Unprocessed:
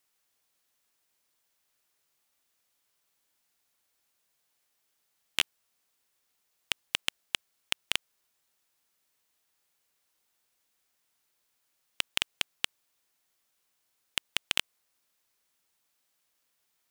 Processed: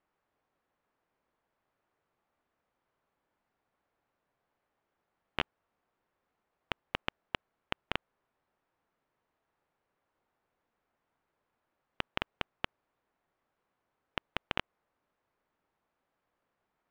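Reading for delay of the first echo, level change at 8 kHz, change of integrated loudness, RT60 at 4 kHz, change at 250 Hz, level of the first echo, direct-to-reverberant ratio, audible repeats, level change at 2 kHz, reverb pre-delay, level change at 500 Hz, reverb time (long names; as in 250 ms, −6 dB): no echo audible, −26.5 dB, −7.0 dB, no reverb audible, +6.5 dB, no echo audible, no reverb audible, no echo audible, −4.5 dB, no reverb audible, +6.5 dB, no reverb audible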